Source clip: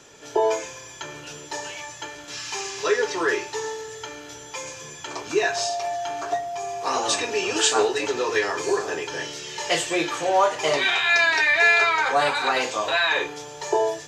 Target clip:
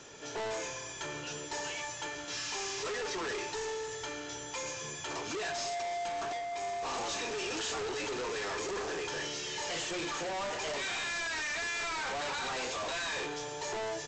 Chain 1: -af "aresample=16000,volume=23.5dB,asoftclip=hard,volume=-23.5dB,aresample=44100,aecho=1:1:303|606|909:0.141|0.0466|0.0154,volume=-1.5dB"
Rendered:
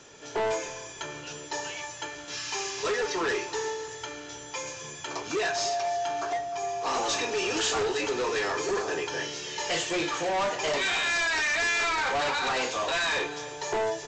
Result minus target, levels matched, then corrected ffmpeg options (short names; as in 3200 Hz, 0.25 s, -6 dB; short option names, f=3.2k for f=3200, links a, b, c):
overloaded stage: distortion -5 dB
-af "aresample=16000,volume=33.5dB,asoftclip=hard,volume=-33.5dB,aresample=44100,aecho=1:1:303|606|909:0.141|0.0466|0.0154,volume=-1.5dB"